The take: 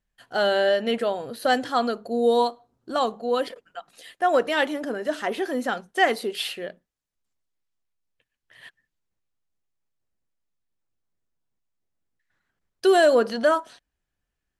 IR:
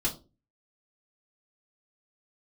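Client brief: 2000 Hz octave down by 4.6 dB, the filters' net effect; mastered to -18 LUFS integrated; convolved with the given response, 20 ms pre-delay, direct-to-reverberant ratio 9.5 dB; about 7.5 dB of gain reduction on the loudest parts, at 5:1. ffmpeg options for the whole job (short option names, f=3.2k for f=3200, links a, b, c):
-filter_complex "[0:a]equalizer=f=2k:t=o:g=-6,acompressor=threshold=-23dB:ratio=5,asplit=2[a][b];[1:a]atrim=start_sample=2205,adelay=20[c];[b][c]afir=irnorm=-1:irlink=0,volume=-15.5dB[d];[a][d]amix=inputs=2:normalize=0,volume=10.5dB"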